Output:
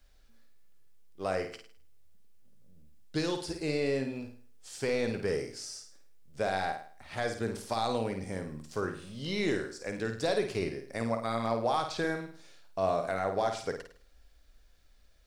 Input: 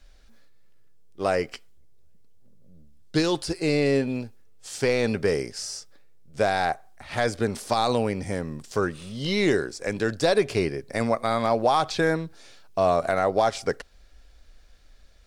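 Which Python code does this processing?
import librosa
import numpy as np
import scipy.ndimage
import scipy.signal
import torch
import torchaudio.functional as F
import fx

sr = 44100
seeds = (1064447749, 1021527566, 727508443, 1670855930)

y = fx.room_flutter(x, sr, wall_m=9.0, rt60_s=0.46)
y = fx.quant_dither(y, sr, seeds[0], bits=12, dither='triangular')
y = y * librosa.db_to_amplitude(-9.0)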